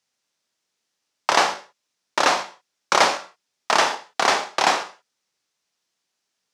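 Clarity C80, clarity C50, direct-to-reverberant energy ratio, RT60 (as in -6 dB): 17.0 dB, 13.5 dB, 8.5 dB, not exponential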